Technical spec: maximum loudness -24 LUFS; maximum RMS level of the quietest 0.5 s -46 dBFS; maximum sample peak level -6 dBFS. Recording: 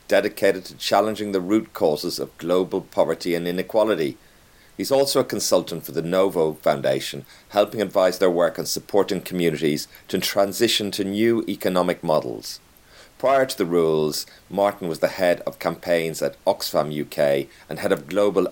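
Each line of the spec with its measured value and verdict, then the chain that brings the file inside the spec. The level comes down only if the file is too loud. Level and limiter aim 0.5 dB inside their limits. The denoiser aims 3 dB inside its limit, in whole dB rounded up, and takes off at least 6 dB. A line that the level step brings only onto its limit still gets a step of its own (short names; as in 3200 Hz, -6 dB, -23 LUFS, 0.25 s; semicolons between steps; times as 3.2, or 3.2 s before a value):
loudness -22.0 LUFS: fail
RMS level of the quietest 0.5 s -52 dBFS: OK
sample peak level -4.5 dBFS: fail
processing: gain -2.5 dB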